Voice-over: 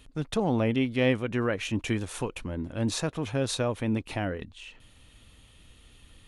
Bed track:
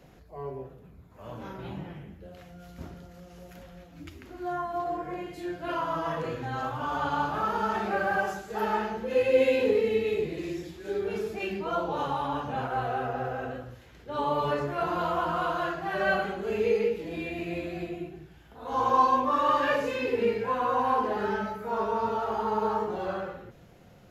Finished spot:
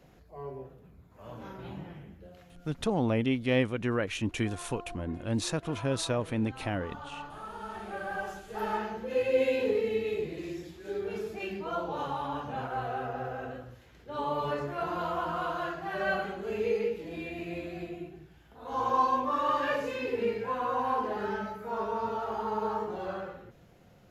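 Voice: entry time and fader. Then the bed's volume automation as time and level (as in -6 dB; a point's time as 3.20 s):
2.50 s, -2.0 dB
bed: 2.23 s -3.5 dB
3.02 s -14.5 dB
7.41 s -14.5 dB
8.68 s -4 dB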